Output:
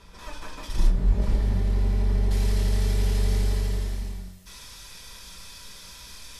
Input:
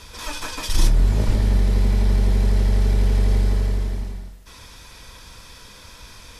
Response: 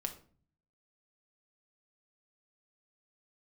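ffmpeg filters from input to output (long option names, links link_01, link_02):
-filter_complex "[0:a]asetnsamples=nb_out_samples=441:pad=0,asendcmd='1.22 highshelf g -3.5;2.31 highshelf g 10',highshelf=frequency=2500:gain=-9[link_01];[1:a]atrim=start_sample=2205[link_02];[link_01][link_02]afir=irnorm=-1:irlink=0,volume=-6dB"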